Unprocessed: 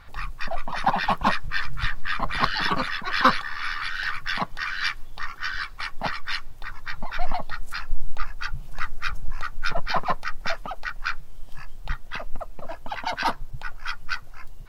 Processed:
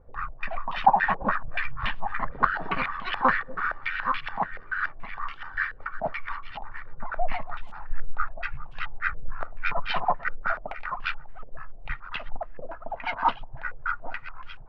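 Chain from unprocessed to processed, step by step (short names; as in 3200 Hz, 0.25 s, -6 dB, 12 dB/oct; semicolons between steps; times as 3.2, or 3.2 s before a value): reverse delay 0.526 s, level -12 dB; stepped low-pass 7 Hz 500–3000 Hz; gain -5.5 dB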